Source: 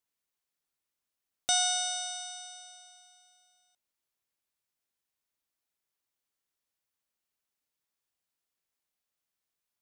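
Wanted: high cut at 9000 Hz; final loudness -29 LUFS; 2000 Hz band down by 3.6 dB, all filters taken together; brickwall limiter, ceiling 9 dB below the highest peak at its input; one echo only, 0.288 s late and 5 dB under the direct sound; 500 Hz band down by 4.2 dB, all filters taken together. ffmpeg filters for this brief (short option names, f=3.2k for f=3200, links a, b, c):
-af "lowpass=9k,equalizer=f=500:t=o:g=-8,equalizer=f=2k:t=o:g=-5,alimiter=level_in=1dB:limit=-24dB:level=0:latency=1,volume=-1dB,aecho=1:1:288:0.562,volume=5.5dB"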